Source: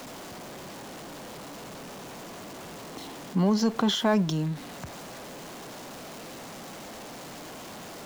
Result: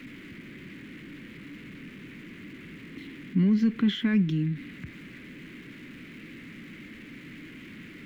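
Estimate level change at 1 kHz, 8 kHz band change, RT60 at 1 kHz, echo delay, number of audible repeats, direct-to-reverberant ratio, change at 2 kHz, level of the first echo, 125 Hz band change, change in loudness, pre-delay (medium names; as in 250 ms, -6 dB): -17.5 dB, under -15 dB, no reverb, no echo, no echo, no reverb, 0.0 dB, no echo, +1.5 dB, +6.5 dB, no reverb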